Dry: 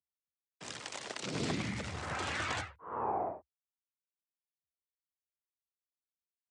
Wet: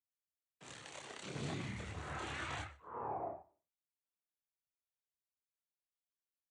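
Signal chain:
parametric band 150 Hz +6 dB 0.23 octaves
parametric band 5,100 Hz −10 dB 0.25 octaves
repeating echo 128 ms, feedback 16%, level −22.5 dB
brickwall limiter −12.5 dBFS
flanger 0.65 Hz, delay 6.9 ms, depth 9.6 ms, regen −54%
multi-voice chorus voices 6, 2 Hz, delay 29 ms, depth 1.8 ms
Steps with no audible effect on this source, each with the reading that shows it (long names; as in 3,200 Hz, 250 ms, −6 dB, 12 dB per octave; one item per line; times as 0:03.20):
brickwall limiter −12.5 dBFS: peak of its input −21.0 dBFS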